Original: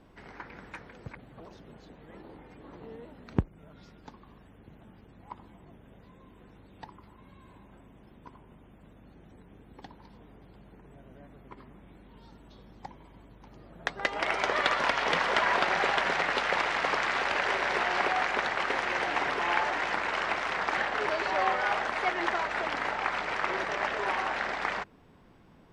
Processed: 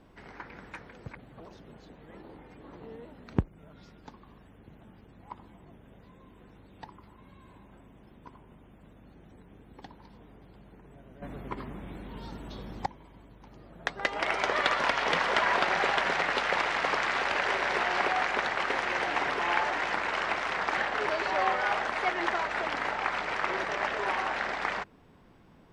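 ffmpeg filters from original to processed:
ffmpeg -i in.wav -filter_complex "[0:a]asplit=3[link_01][link_02][link_03];[link_01]atrim=end=11.222[link_04];[link_02]atrim=start=11.218:end=12.862,asetpts=PTS-STARTPTS,volume=11dB[link_05];[link_03]atrim=start=12.858[link_06];[link_04][link_05]acrossfade=duration=0.004:curve1=hsin:curve2=hsin[link_07];[link_07][link_06]acrossfade=duration=0.004:curve1=hsin:curve2=hsin" out.wav

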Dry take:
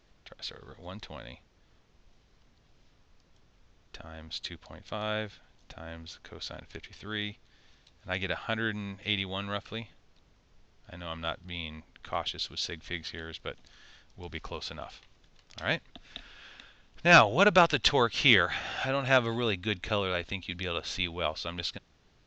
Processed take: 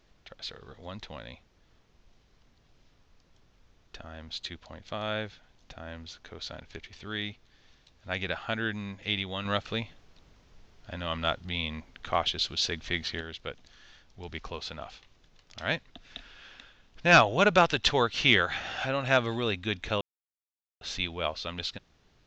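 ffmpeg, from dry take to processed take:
ffmpeg -i in.wav -filter_complex "[0:a]asettb=1/sr,asplit=3[link_01][link_02][link_03];[link_01]atrim=end=9.454[link_04];[link_02]atrim=start=9.45:end=13.21,asetpts=PTS-STARTPTS,afade=type=in:duration=0.004:curve=qsin,afade=type=out:start_time=3.756:duration=0.004:curve=qsin,acontrast=29[link_05];[link_03]atrim=start=13.206[link_06];[link_04][link_05]acrossfade=duration=0.004:curve1=hsin:curve2=qsin[link_07];[link_07][link_06]acrossfade=duration=0.004:curve1=qsin:curve2=hsin,asplit=3[link_08][link_09][link_10];[link_08]atrim=end=20.01,asetpts=PTS-STARTPTS,afade=type=out:start_time=20.006:duration=0.004:curve=hsin[link_11];[link_09]atrim=start=20.01:end=20.81,asetpts=PTS-STARTPTS,volume=0[link_12];[link_10]atrim=start=20.81,asetpts=PTS-STARTPTS,afade=type=in:duration=0.004:curve=hsin[link_13];[link_11][link_12][link_13]concat=n=3:v=0:a=1" out.wav

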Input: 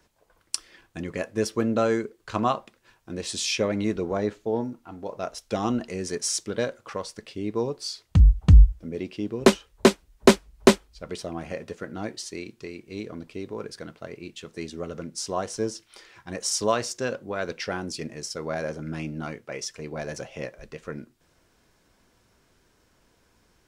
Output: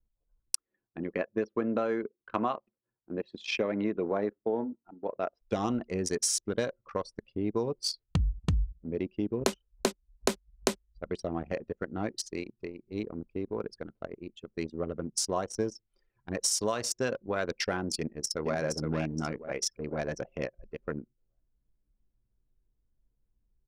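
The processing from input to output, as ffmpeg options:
ffmpeg -i in.wav -filter_complex "[0:a]asettb=1/sr,asplit=3[link_01][link_02][link_03];[link_01]atrim=end=0.554[link_04];[link_02]atrim=start=0.55:end=5.41,asetpts=PTS-STARTPTS,afade=type=in:duration=0.004:curve=qsin,afade=type=out:start_time=4.856:duration=0.004:curve=qsin,highpass=200,lowpass=2700[link_05];[link_03]atrim=start=5.406[link_06];[link_04][link_05]acrossfade=duration=0.004:curve1=hsin:curve2=qsin[link_07];[link_07][link_06]acrossfade=duration=0.004:curve1=qsin:curve2=hsin,asplit=2[link_08][link_09];[link_09]afade=type=in:start_time=17.97:duration=0.01,afade=type=out:start_time=18.58:duration=0.01,aecho=0:1:470|940|1410|1880|2350|2820:0.630957|0.315479|0.157739|0.0788697|0.0394348|0.0197174[link_10];[link_08][link_10]amix=inputs=2:normalize=0,anlmdn=10,highshelf=frequency=9300:gain=11.5,acompressor=threshold=-26dB:ratio=12,volume=1dB" out.wav

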